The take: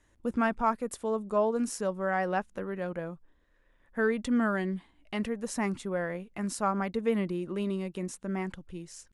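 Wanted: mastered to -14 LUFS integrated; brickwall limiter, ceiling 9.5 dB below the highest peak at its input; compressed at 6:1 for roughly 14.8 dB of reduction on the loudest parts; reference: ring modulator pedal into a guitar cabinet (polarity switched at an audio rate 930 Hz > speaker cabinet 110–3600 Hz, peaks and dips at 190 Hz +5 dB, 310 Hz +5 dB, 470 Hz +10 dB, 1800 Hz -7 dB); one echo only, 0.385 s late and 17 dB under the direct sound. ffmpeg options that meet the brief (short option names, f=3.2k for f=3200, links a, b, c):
-af "acompressor=threshold=-39dB:ratio=6,alimiter=level_in=10dB:limit=-24dB:level=0:latency=1,volume=-10dB,aecho=1:1:385:0.141,aeval=exprs='val(0)*sgn(sin(2*PI*930*n/s))':c=same,highpass=110,equalizer=f=190:t=q:w=4:g=5,equalizer=f=310:t=q:w=4:g=5,equalizer=f=470:t=q:w=4:g=10,equalizer=f=1.8k:t=q:w=4:g=-7,lowpass=f=3.6k:w=0.5412,lowpass=f=3.6k:w=1.3066,volume=28dB"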